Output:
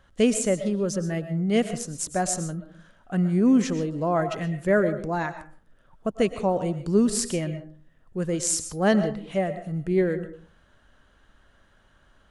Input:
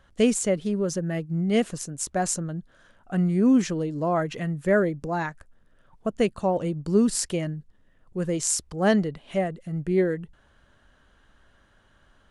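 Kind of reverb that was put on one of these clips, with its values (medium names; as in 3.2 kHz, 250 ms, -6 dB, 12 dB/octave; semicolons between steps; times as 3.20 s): algorithmic reverb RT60 0.43 s, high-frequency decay 0.45×, pre-delay 80 ms, DRR 10.5 dB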